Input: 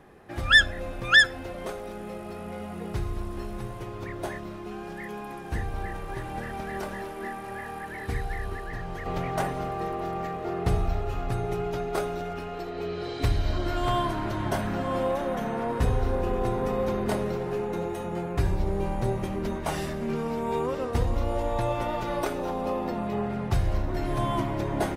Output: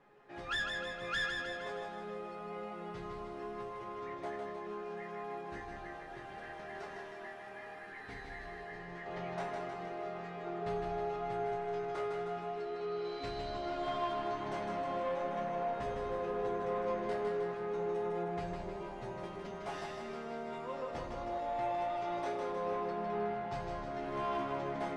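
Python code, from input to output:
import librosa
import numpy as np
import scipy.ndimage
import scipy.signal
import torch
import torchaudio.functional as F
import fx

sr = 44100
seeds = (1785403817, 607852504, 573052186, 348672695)

p1 = fx.low_shelf(x, sr, hz=210.0, db=-12.0)
p2 = fx.resonator_bank(p1, sr, root=49, chord='major', decay_s=0.22)
p3 = 10.0 ** (-35.5 / 20.0) * np.tanh(p2 / 10.0 ** (-35.5 / 20.0))
p4 = fx.air_absorb(p3, sr, metres=98.0)
p5 = p4 + fx.echo_feedback(p4, sr, ms=156, feedback_pct=57, wet_db=-4.5, dry=0)
y = F.gain(torch.from_numpy(p5), 4.5).numpy()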